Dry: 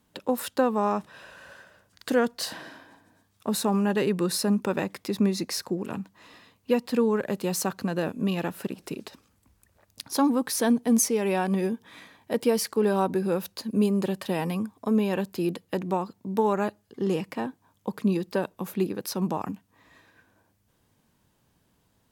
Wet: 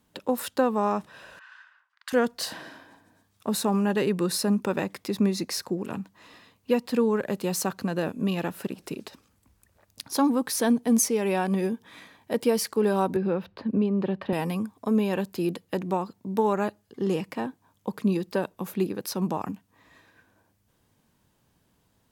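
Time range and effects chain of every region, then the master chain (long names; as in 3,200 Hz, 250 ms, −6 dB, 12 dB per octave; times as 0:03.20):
0:01.39–0:02.13: Butterworth high-pass 1,000 Hz + low-pass that shuts in the quiet parts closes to 1,400 Hz, open at −38 dBFS
0:13.16–0:14.33: high-frequency loss of the air 360 metres + multiband upward and downward compressor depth 70%
whole clip: no processing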